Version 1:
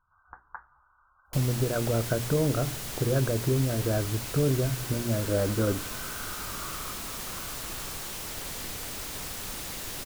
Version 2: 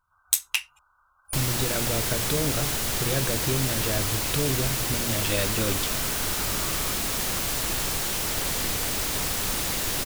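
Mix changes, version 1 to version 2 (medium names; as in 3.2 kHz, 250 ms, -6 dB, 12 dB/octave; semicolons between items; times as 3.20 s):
speech: remove steep low-pass 1.6 kHz 96 dB/octave; second sound +9.5 dB; reverb: off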